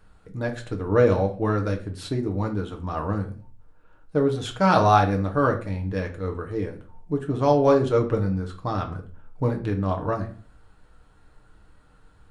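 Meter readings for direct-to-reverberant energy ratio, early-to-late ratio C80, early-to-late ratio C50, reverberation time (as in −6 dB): 1.5 dB, 16.5 dB, 12.0 dB, 0.40 s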